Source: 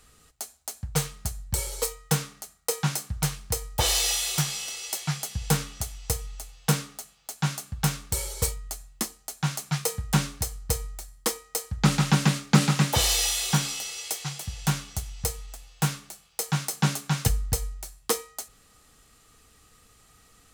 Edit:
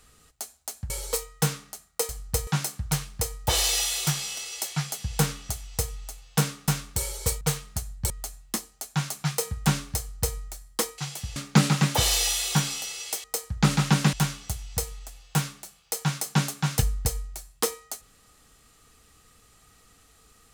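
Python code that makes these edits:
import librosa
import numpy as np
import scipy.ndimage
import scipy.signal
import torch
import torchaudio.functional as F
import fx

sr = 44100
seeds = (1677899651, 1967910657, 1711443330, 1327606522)

y = fx.edit(x, sr, fx.move(start_s=0.9, length_s=0.69, to_s=8.57),
    fx.cut(start_s=6.99, length_s=0.85),
    fx.duplicate(start_s=10.45, length_s=0.38, to_s=2.78),
    fx.swap(start_s=11.45, length_s=0.89, other_s=14.22, other_length_s=0.38), tone=tone)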